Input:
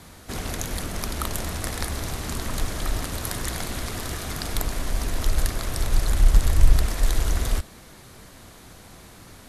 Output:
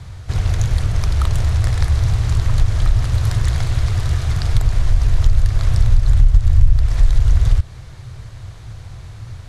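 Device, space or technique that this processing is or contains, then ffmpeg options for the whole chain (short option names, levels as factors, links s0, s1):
jukebox: -af "lowpass=6600,lowshelf=f=160:t=q:w=3:g=11.5,acompressor=threshold=0.316:ratio=4,volume=1.26"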